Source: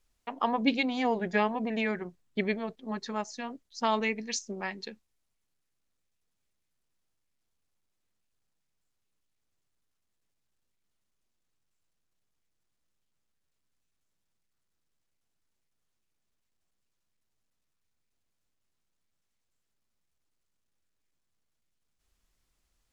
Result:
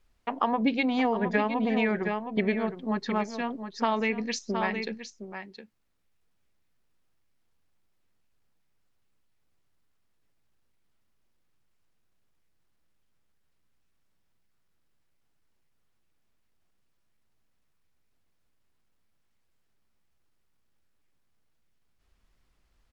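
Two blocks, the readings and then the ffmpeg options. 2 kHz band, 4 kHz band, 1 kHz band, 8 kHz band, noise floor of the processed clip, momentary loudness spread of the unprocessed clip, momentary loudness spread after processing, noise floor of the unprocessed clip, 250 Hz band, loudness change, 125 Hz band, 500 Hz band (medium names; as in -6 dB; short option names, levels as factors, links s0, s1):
+2.5 dB, -0.5 dB, +2.5 dB, no reading, -70 dBFS, 11 LU, 14 LU, -80 dBFS, +4.5 dB, +3.0 dB, +5.0 dB, +3.5 dB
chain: -af "bass=f=250:g=1,treble=f=4000:g=-13,aecho=1:1:714:0.299,acompressor=threshold=0.0398:ratio=6,equalizer=f=4800:w=2.9:g=3,volume=2.11" -ar 44100 -c:a sbc -b:a 192k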